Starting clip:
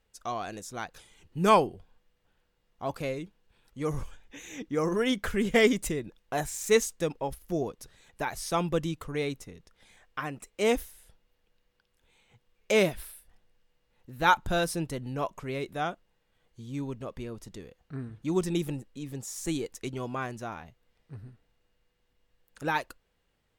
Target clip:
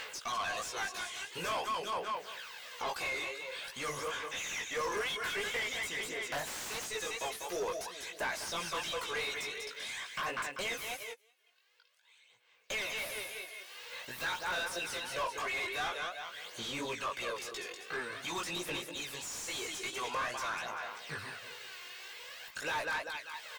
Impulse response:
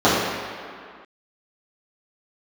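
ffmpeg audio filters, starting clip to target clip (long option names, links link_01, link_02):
-filter_complex "[0:a]asettb=1/sr,asplit=3[link_01][link_02][link_03];[link_01]atrim=end=14.184[link_04];[link_02]atrim=start=14.18:end=14.6,asetpts=PTS-STARTPTS,afade=type=in:duration=0.004:curve=qsin,afade=type=out:start_time=0.416:duration=0.004:curve=qsin,aeval=exprs='val(0)+0.5*0.0251*sgn(val(0))':channel_layout=same[link_05];[link_03]atrim=start=14.596[link_06];[link_04][link_05]acrossfade=duration=0.004:curve1=hsin:curve2=qsin[link_07];[link_07][link_06]acrossfade=duration=0.004:curve1=qsin:curve2=hsin,aderivative,acompressor=mode=upward:threshold=-48dB:ratio=2.5,equalizer=frequency=12000:width=0.63:gain=-10,aecho=1:1:1.9:0.33,aecho=1:1:195|390|585|780:0.282|0.11|0.0429|0.0167,aphaser=in_gain=1:out_gain=1:delay=2.8:decay=0.55:speed=0.48:type=sinusoidal,acompressor=threshold=-44dB:ratio=6,asettb=1/sr,asplit=3[link_08][link_09][link_10];[link_08]atrim=end=6.194[link_11];[link_09]atrim=start=6.19:end=6.85,asetpts=PTS-STARTPTS,afade=type=in:duration=0.004:curve=qsin,afade=type=out:start_time=0.656:duration=0.004:curve=qsin,aeval=exprs='(mod(119*val(0)+1,2)-1)/119':channel_layout=same[link_12];[link_10]atrim=start=6.846[link_13];[link_11][link_12]acrossfade=duration=0.004:curve1=hsin:curve2=qsin[link_14];[link_14][link_13]acrossfade=duration=0.004:curve1=qsin:curve2=hsin,asettb=1/sr,asplit=3[link_15][link_16][link_17];[link_15]atrim=end=10.644[link_18];[link_16]atrim=start=10.64:end=12.84,asetpts=PTS-STARTPTS,afade=type=in:duration=0.004:curve=qsin,afade=type=out:start_time=2.196:duration=0.004:curve=qsin,agate=range=-25dB:threshold=-53dB:ratio=16:detection=peak[link_19];[link_17]atrim=start=12.836[link_20];[link_18][link_19]acrossfade=duration=0.004:curve1=hsin:curve2=qsin[link_21];[link_21][link_20]acrossfade=duration=0.004:curve1=qsin:curve2=hsin,flanger=delay=16.5:depth=4.4:speed=2.9,asplit=2[link_22][link_23];[link_23]highpass=frequency=720:poles=1,volume=28dB,asoftclip=type=tanh:threshold=-34dB[link_24];[link_22][link_24]amix=inputs=2:normalize=0,lowpass=frequency=2100:poles=1,volume=-6dB,volume=8.5dB"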